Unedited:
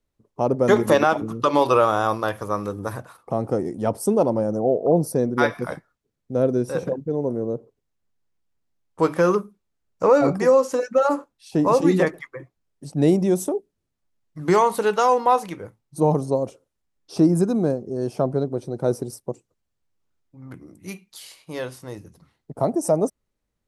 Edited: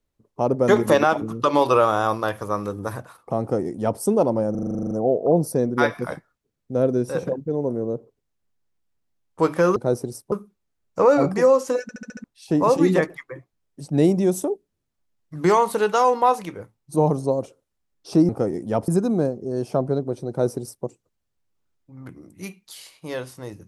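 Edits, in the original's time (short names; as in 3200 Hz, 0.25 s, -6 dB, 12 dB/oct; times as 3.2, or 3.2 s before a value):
3.41–4 copy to 17.33
4.51 stutter 0.04 s, 11 plays
10.86 stutter in place 0.07 s, 6 plays
18.74–19.3 copy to 9.36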